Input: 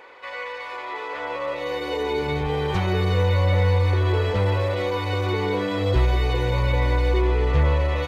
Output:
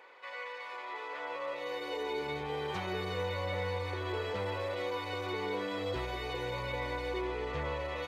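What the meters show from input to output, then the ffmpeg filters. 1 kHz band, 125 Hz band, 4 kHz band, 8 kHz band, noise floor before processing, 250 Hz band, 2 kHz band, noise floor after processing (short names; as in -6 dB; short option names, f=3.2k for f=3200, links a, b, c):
-9.5 dB, -21.0 dB, -9.0 dB, n/a, -34 dBFS, -13.5 dB, -9.0 dB, -44 dBFS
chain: -af "highpass=f=360:p=1,volume=-9dB"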